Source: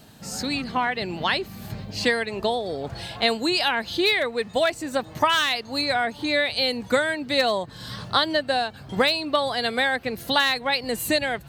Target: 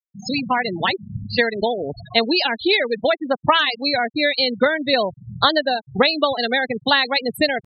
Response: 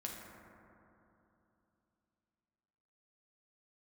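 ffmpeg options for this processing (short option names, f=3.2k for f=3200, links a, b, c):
-af "adynamicequalizer=threshold=0.0158:dfrequency=1100:dqfactor=0.88:tfrequency=1100:tqfactor=0.88:attack=5:release=100:ratio=0.375:range=2.5:mode=cutabove:tftype=bell,atempo=1.5,afftfilt=real='re*gte(hypot(re,im),0.0708)':imag='im*gte(hypot(re,im),0.0708)':win_size=1024:overlap=0.75,volume=5.5dB"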